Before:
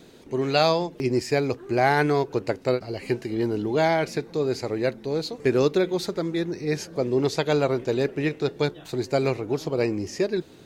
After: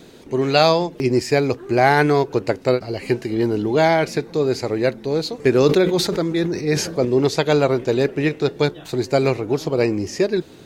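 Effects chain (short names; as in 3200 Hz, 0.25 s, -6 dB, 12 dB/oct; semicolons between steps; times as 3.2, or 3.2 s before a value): 5.66–7.05 sustainer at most 72 dB/s; gain +5.5 dB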